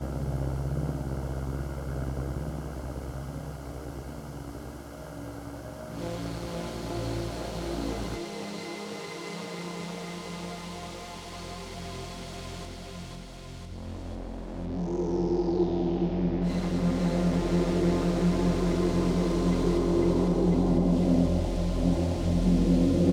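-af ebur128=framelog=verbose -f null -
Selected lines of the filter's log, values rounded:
Integrated loudness:
  I:         -29.3 LUFS
  Threshold: -39.9 LUFS
Loudness range:
  LRA:        13.8 LU
  Threshold: -50.3 LUFS
  LRA low:   -39.2 LUFS
  LRA high:  -25.5 LUFS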